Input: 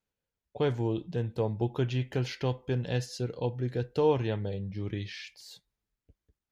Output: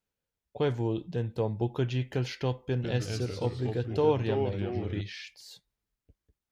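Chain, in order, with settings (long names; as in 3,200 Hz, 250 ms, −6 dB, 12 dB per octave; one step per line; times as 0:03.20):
0:02.57–0:05.01: delay with pitch and tempo change per echo 135 ms, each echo −2 semitones, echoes 3, each echo −6 dB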